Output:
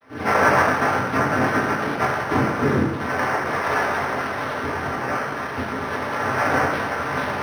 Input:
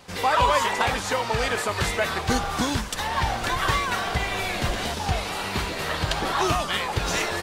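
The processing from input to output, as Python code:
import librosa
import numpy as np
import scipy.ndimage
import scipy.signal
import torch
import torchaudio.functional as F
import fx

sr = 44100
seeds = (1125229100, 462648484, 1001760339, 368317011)

y = fx.vocoder_glide(x, sr, note=56, semitones=5)
y = scipy.signal.sosfilt(scipy.signal.butter(2, 320.0, 'highpass', fs=sr, output='sos'), y)
y = fx.noise_vocoder(y, sr, seeds[0], bands=3)
y = fx.air_absorb(y, sr, metres=110.0)
y = fx.rev_fdn(y, sr, rt60_s=1.2, lf_ratio=1.05, hf_ratio=0.75, size_ms=69.0, drr_db=-6.5)
y = np.interp(np.arange(len(y)), np.arange(len(y))[::6], y[::6])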